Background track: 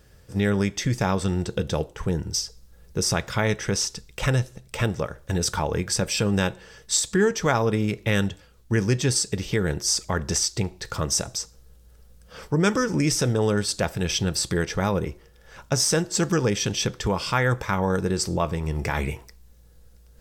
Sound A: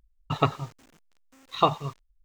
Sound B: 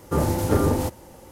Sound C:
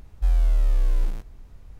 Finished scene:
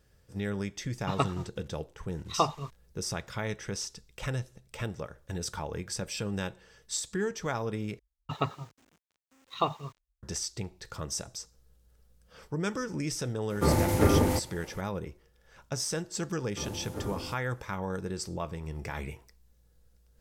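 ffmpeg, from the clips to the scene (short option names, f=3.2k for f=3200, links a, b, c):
-filter_complex "[1:a]asplit=2[a][b];[2:a]asplit=2[c][d];[0:a]volume=-11dB[e];[a]aresample=32000,aresample=44100[f];[b]highpass=45[g];[c]equalizer=f=2.1k:t=o:w=0.34:g=8.5[h];[e]asplit=2[i][j];[i]atrim=end=7.994[k];[g]atrim=end=2.24,asetpts=PTS-STARTPTS,volume=-7dB[l];[j]atrim=start=10.226[m];[f]atrim=end=2.24,asetpts=PTS-STARTPTS,volume=-5dB,afade=t=in:d=0.004:c=hsin,afade=t=out:st=2.236:d=0.004:c=hsin,adelay=770[n];[h]atrim=end=1.31,asetpts=PTS-STARTPTS,volume=-2.5dB,afade=t=in:d=0.004:c=hsin,afade=t=out:st=1.306:d=0.004:c=hsin,adelay=13500[o];[d]atrim=end=1.31,asetpts=PTS-STARTPTS,volume=-17.5dB,afade=t=in:d=0.004:c=hsin,afade=t=out:st=1.306:d=0.004:c=hsin,adelay=16450[p];[k][l]acrossfade=d=0.004:c1=hsin:c2=hsin[q];[q][m]acrossfade=d=0.004:c1=hsin:c2=hsin[r];[r][n][o][p]amix=inputs=4:normalize=0"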